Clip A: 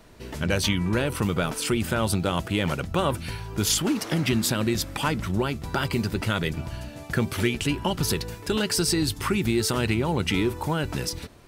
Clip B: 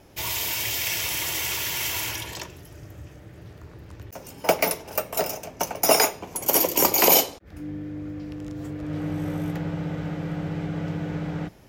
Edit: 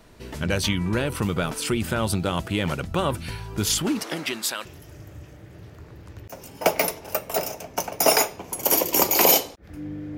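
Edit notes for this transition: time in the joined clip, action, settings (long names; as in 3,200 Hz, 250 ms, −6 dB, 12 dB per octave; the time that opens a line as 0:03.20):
clip A
0:04.02–0:04.65: high-pass filter 250 Hz → 910 Hz
0:04.65: continue with clip B from 0:02.48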